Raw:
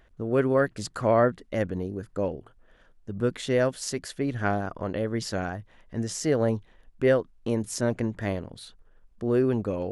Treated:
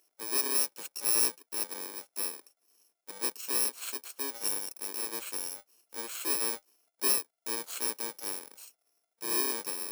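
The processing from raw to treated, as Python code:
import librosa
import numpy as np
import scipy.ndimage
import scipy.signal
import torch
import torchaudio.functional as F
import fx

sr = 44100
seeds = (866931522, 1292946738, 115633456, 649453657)

y = fx.bit_reversed(x, sr, seeds[0], block=64)
y = scipy.signal.sosfilt(scipy.signal.butter(4, 340.0, 'highpass', fs=sr, output='sos'), y)
y = fx.peak_eq(y, sr, hz=7100.0, db=4.5, octaves=1.7)
y = y * librosa.db_to_amplitude(-7.0)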